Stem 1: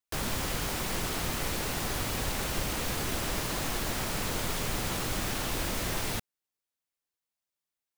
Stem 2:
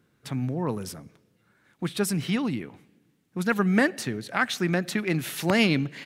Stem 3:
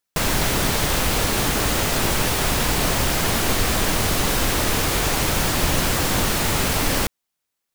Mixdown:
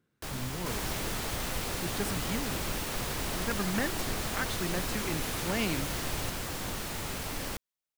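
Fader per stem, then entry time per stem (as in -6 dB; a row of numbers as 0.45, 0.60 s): -6.0, -10.5, -15.5 dB; 0.10, 0.00, 0.50 s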